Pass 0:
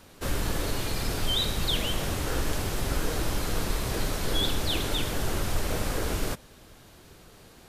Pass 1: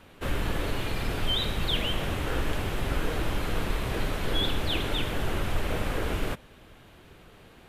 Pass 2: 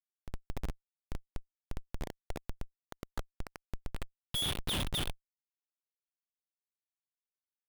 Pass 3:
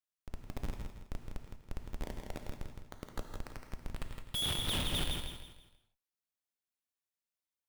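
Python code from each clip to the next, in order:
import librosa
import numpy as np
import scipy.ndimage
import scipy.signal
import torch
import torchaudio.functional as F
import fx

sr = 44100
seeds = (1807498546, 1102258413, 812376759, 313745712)

y1 = fx.high_shelf_res(x, sr, hz=3900.0, db=-8.0, q=1.5)
y2 = fx.room_early_taps(y1, sr, ms=(26, 40), db=(-10.5, -13.0))
y2 = fx.filter_sweep_bandpass(y2, sr, from_hz=690.0, to_hz=3400.0, start_s=2.41, end_s=4.26, q=6.0)
y2 = fx.schmitt(y2, sr, flips_db=-35.5)
y2 = F.gain(torch.from_numpy(y2), 10.0).numpy()
y3 = fx.echo_feedback(y2, sr, ms=163, feedback_pct=37, wet_db=-6)
y3 = fx.rev_gated(y3, sr, seeds[0], gate_ms=210, shape='flat', drr_db=5.5)
y3 = F.gain(torch.from_numpy(y3), -2.0).numpy()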